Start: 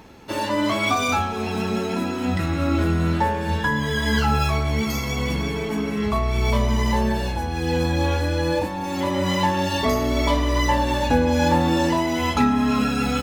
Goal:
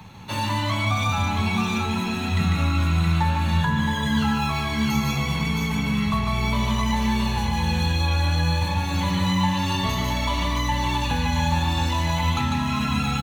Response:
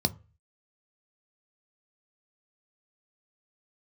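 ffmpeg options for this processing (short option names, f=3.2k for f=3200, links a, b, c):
-filter_complex "[0:a]aecho=1:1:147|669:0.668|0.473,acrossover=split=97|200|1200[a][b][c][d];[a]acompressor=threshold=-32dB:ratio=4[e];[b]acompressor=threshold=-35dB:ratio=4[f];[c]acompressor=threshold=-28dB:ratio=4[g];[d]acompressor=threshold=-30dB:ratio=4[h];[e][f][g][h]amix=inputs=4:normalize=0,asplit=2[i][j];[1:a]atrim=start_sample=2205[k];[j][k]afir=irnorm=-1:irlink=0,volume=-14dB[l];[i][l]amix=inputs=2:normalize=0,volume=1dB"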